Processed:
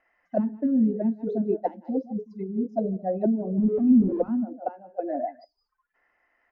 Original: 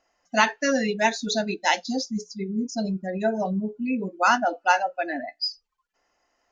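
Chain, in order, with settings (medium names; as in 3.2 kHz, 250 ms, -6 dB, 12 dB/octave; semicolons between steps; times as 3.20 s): 3.58–4.30 s: jump at every zero crossing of -24.5 dBFS; echo from a far wall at 26 m, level -17 dB; touch-sensitive low-pass 230–2000 Hz down, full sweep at -19.5 dBFS; trim -3.5 dB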